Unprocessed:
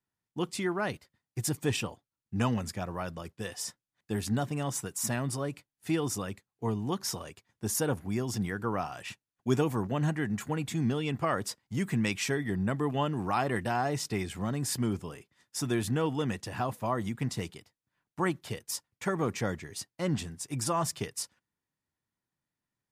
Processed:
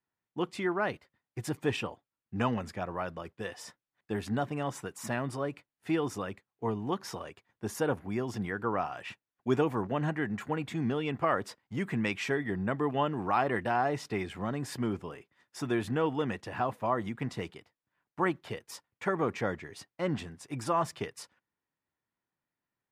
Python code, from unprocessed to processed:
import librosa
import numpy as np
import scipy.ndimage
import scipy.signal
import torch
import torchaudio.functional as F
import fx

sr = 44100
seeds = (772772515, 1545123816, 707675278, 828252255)

y = fx.bass_treble(x, sr, bass_db=-7, treble_db=-15)
y = y * librosa.db_to_amplitude(2.0)